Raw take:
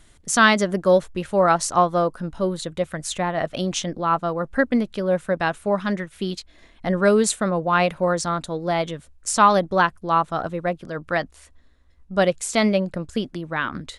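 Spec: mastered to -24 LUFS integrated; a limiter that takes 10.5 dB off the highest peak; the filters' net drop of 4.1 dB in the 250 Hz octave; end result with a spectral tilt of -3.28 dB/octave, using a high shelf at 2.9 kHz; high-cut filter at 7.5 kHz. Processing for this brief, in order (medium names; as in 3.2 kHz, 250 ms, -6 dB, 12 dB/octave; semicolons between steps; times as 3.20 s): low-pass 7.5 kHz; peaking EQ 250 Hz -6 dB; treble shelf 2.9 kHz +7.5 dB; peak limiter -10.5 dBFS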